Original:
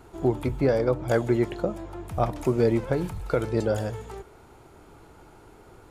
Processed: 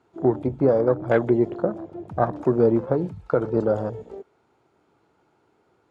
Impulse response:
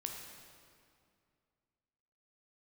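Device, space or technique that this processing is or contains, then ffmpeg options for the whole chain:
over-cleaned archive recording: -af "highpass=140,lowpass=5900,afwtdn=0.0224,volume=1.58"

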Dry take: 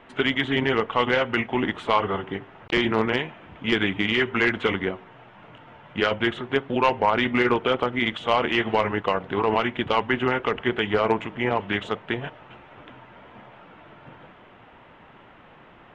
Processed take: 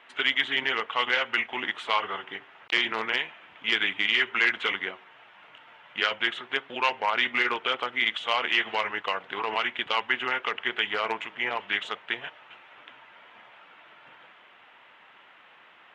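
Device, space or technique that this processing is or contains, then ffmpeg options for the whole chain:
filter by subtraction: -filter_complex "[0:a]asplit=2[s0][s1];[s1]lowpass=2500,volume=-1[s2];[s0][s2]amix=inputs=2:normalize=0"

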